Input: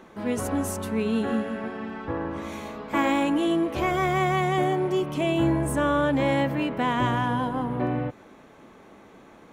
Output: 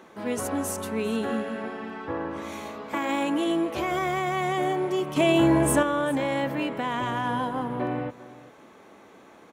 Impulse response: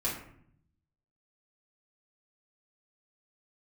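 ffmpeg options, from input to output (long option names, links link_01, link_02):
-filter_complex "[0:a]highpass=63,bass=frequency=250:gain=-6,treble=frequency=4000:gain=2,alimiter=limit=-18dB:level=0:latency=1:release=25,asettb=1/sr,asplit=3[link_01][link_02][link_03];[link_01]atrim=end=5.164[link_04];[link_02]atrim=start=5.16:end=5.83,asetpts=PTS-STARTPTS,afade=type=in:duration=0.004:curve=qsin,afade=type=out:start_time=0.666:duration=0.004:curve=qsin,acontrast=69[link_05];[link_03]atrim=start=5.826[link_06];[link_04][link_05]acrossfade=duration=0.004:curve1=hsin:curve2=qsin[link_07];[link_07][link_06]acrossfade=duration=0.004:curve1=qsin:curve2=hsin,aecho=1:1:399:0.119"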